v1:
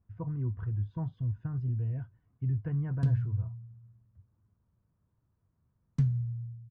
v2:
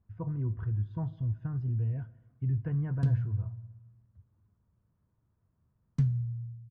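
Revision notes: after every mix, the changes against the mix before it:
speech: send on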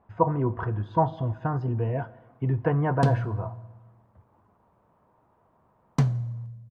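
master: remove FFT filter 100 Hz 0 dB, 840 Hz -28 dB, 1.5 kHz -17 dB

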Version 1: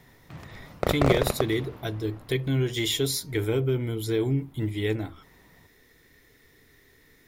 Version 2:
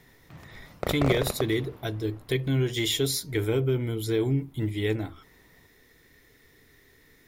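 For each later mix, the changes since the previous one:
background -4.5 dB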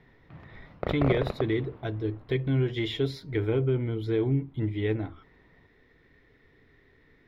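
master: add distance through air 340 m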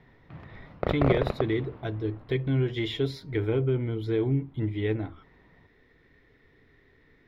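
background +3.0 dB

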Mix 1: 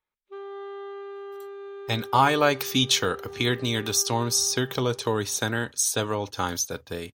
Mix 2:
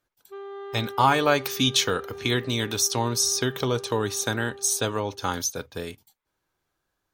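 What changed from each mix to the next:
speech: entry -1.15 s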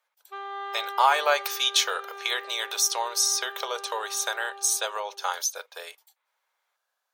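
background +9.5 dB; master: add steep high-pass 550 Hz 36 dB/octave

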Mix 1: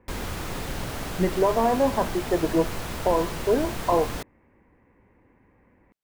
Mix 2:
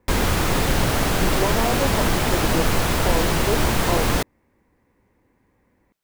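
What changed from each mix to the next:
speech -4.0 dB; background +12.0 dB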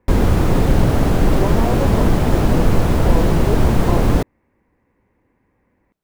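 background: add tilt shelf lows +8 dB, about 920 Hz

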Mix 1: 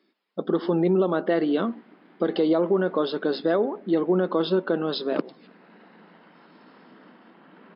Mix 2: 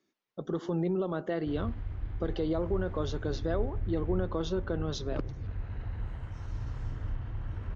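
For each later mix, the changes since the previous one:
speech -10.0 dB; master: remove brick-wall FIR band-pass 170–5300 Hz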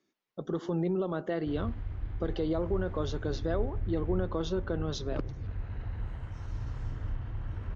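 no change

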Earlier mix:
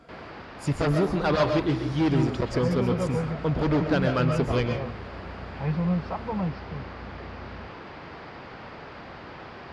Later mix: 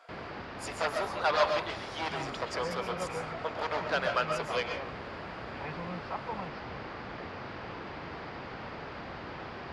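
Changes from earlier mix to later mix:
speech: add high-pass 610 Hz 24 dB/octave; second sound: add band-pass filter 2.2 kHz, Q 0.57

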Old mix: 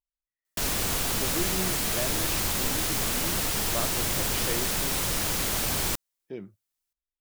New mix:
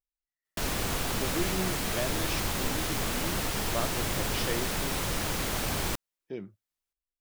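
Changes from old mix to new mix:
speech: add treble shelf 4.3 kHz +12 dB; master: add treble shelf 4 kHz -8 dB

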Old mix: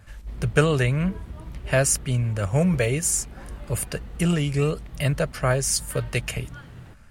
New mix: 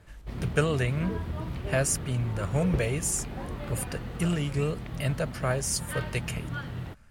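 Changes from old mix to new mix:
speech -6.0 dB; background +7.0 dB

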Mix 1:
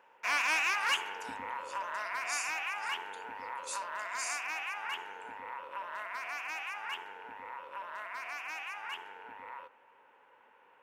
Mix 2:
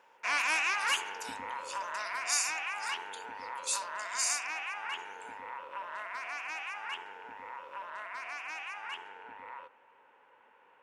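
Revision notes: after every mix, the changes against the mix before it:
speech +8.5 dB; background: add low-pass 9.8 kHz 24 dB/octave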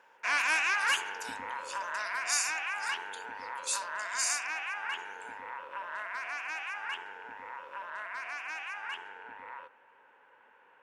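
master: add peaking EQ 1.6 kHz +7 dB 0.26 oct

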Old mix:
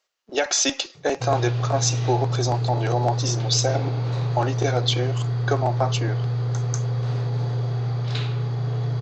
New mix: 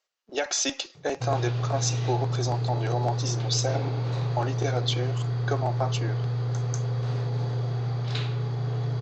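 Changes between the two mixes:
speech -5.5 dB; background: send -11.0 dB

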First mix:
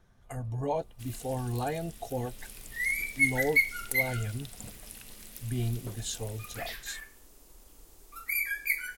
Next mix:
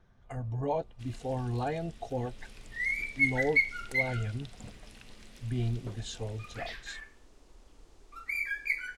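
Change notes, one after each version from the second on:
master: add distance through air 110 m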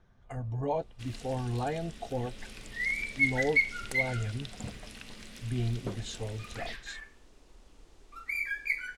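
first sound +7.0 dB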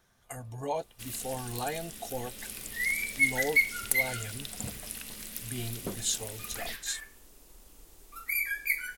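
speech: add tilt EQ +2.5 dB/octave; master: remove distance through air 110 m

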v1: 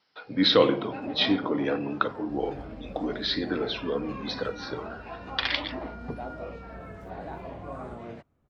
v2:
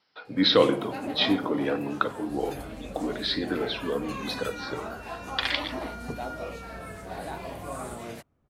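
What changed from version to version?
first sound: remove tape spacing loss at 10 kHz 33 dB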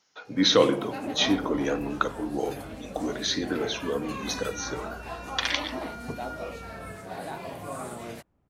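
speech: remove steep low-pass 5.2 kHz 96 dB/octave; second sound: entry -1.05 s

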